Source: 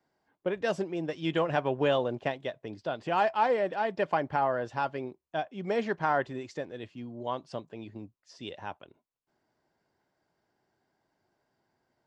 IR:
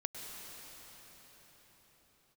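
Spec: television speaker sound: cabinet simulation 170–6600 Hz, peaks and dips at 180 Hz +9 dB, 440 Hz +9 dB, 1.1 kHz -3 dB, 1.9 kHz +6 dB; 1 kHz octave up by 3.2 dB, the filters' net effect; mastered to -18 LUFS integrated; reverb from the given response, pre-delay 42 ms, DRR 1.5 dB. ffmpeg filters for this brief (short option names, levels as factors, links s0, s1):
-filter_complex "[0:a]equalizer=f=1000:t=o:g=4.5,asplit=2[s0][s1];[1:a]atrim=start_sample=2205,adelay=42[s2];[s1][s2]afir=irnorm=-1:irlink=0,volume=0.794[s3];[s0][s3]amix=inputs=2:normalize=0,highpass=f=170:w=0.5412,highpass=f=170:w=1.3066,equalizer=f=180:t=q:w=4:g=9,equalizer=f=440:t=q:w=4:g=9,equalizer=f=1100:t=q:w=4:g=-3,equalizer=f=1900:t=q:w=4:g=6,lowpass=f=6600:w=0.5412,lowpass=f=6600:w=1.3066,volume=2.11"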